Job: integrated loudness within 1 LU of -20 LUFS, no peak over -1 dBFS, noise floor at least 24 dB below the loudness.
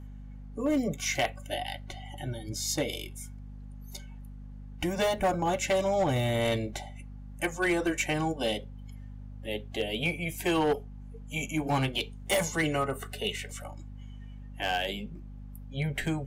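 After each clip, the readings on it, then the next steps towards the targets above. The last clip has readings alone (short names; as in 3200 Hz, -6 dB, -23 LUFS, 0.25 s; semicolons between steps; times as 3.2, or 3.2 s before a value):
clipped 0.8%; flat tops at -21.0 dBFS; hum 50 Hz; harmonics up to 250 Hz; hum level -41 dBFS; loudness -30.5 LUFS; peak -21.0 dBFS; loudness target -20.0 LUFS
-> clip repair -21 dBFS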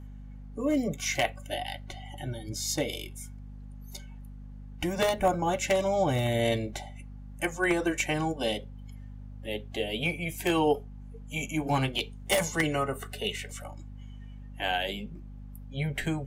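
clipped 0.0%; hum 50 Hz; harmonics up to 250 Hz; hum level -41 dBFS
-> de-hum 50 Hz, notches 5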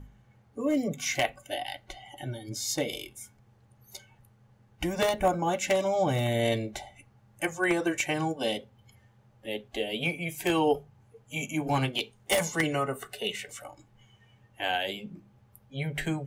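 hum none; loudness -30.0 LUFS; peak -11.5 dBFS; loudness target -20.0 LUFS
-> gain +10 dB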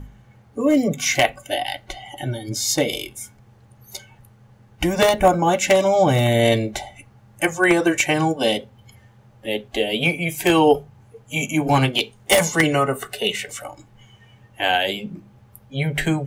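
loudness -20.0 LUFS; peak -1.5 dBFS; noise floor -52 dBFS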